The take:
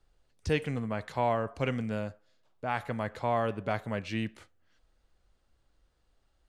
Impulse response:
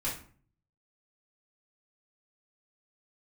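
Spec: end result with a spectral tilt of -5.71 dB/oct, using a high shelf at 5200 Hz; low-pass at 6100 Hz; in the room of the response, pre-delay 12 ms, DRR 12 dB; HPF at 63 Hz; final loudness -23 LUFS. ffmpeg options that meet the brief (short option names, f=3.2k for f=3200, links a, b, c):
-filter_complex "[0:a]highpass=63,lowpass=6.1k,highshelf=f=5.2k:g=-6.5,asplit=2[a][b];[1:a]atrim=start_sample=2205,adelay=12[c];[b][c]afir=irnorm=-1:irlink=0,volume=-17dB[d];[a][d]amix=inputs=2:normalize=0,volume=10dB"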